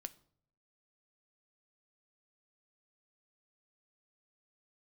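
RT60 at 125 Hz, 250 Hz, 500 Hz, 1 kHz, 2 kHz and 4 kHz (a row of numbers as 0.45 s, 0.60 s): 0.85 s, 0.75 s, 0.70 s, 0.55 s, 0.40 s, 0.40 s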